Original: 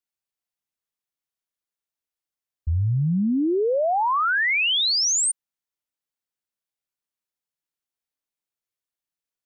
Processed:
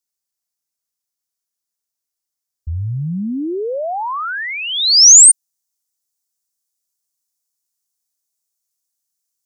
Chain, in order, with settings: resonant high shelf 4100 Hz +8.5 dB, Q 1.5, from 2.76 s +14 dB

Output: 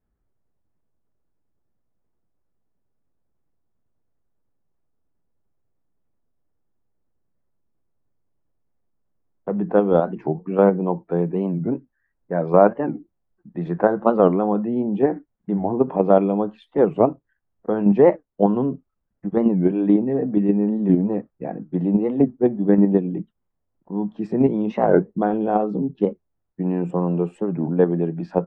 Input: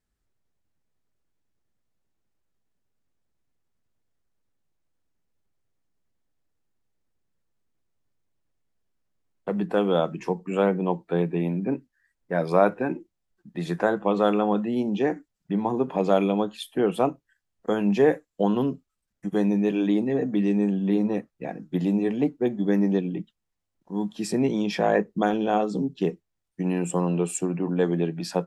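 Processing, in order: LPF 1100 Hz 12 dB/oct; in parallel at -0.5 dB: level quantiser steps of 21 dB; 11–11.61 on the sum: short-mantissa float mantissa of 8-bit; record warp 45 rpm, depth 250 cents; gain +2 dB

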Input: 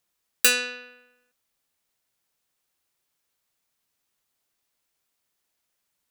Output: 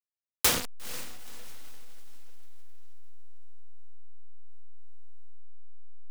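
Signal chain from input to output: level-crossing sampler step -19 dBFS; diffused feedback echo 0.478 s, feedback 41%, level -14.5 dB; noise-modulated delay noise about 1800 Hz, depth 0.22 ms; gain -3.5 dB

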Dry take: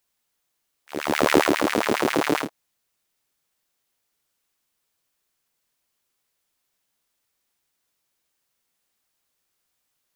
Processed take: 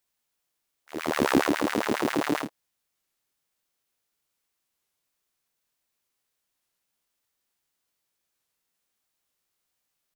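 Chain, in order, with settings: formant shift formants -3 st; record warp 33 1/3 rpm, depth 160 cents; gain -4 dB

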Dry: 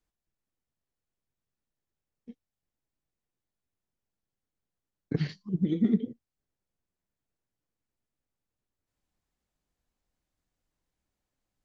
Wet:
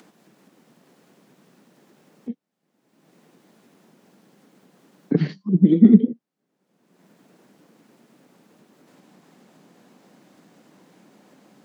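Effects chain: steep high-pass 180 Hz 36 dB/oct; tilt -3 dB/oct; in parallel at -2 dB: upward compressor, threshold -29 dBFS; on the sum: gain +2.5 dB

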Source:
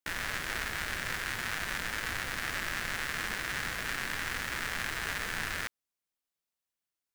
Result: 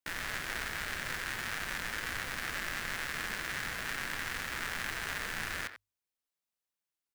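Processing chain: notches 50/100 Hz; speakerphone echo 90 ms, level -9 dB; short-mantissa float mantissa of 2-bit; gain -2.5 dB

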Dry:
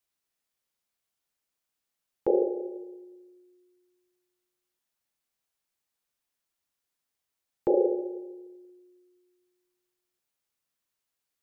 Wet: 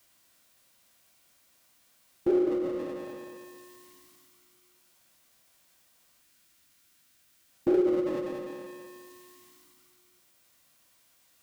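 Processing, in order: notch comb 430 Hz; on a send: thinning echo 0.2 s, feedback 38%, high-pass 350 Hz, level -11 dB; on the sum: power-law curve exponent 0.7; formant shift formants -4 st; spectral gain 6.22–7.51, 370–1200 Hz -6 dB

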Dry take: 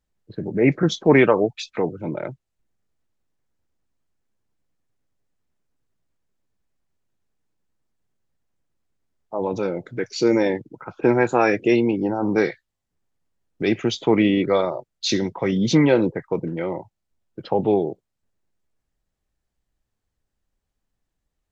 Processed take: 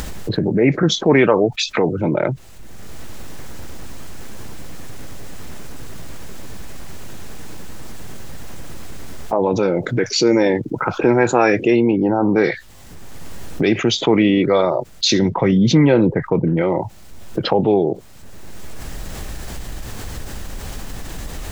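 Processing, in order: 15.19–16.62 tone controls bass +6 dB, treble -7 dB; upward compressor, threshold -20 dBFS; 11.7–12.44 air absorption 160 m; fast leveller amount 50%

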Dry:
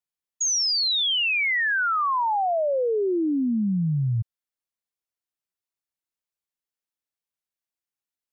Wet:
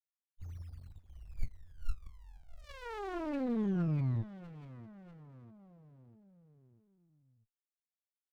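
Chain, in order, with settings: loudest bins only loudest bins 1; small resonant body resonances 1400/2300 Hz, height 16 dB, ringing for 80 ms; on a send: feedback echo 0.644 s, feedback 57%, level -19 dB; on the sum: running maximum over 65 samples; gain -3 dB

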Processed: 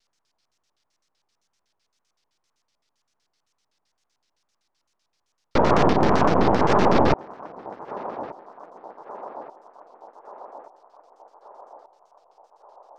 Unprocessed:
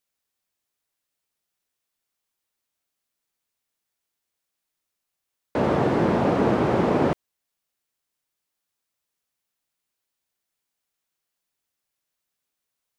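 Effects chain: half-wave rectifier; LFO low-pass square 7.8 Hz 990–5400 Hz; 5.93–6.7 gate -20 dBFS, range -7 dB; wow and flutter 150 cents; narrowing echo 1.18 s, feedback 65%, band-pass 780 Hz, level -21 dB; maximiser +18.5 dB; gain -5.5 dB

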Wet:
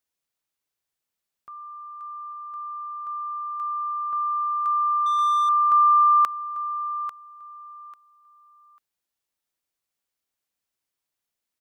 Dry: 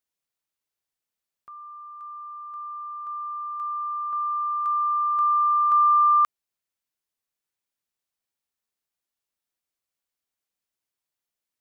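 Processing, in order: on a send: feedback echo 0.844 s, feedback 21%, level -12.5 dB; 5.06–5.49 on the sum: overdrive pedal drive 18 dB, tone 1500 Hz, clips at -18 dBFS; gain +2 dB

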